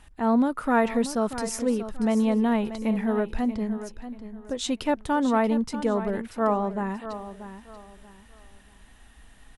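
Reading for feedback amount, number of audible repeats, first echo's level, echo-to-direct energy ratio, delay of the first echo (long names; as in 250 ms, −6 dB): 28%, 3, −12.0 dB, −11.5 dB, 635 ms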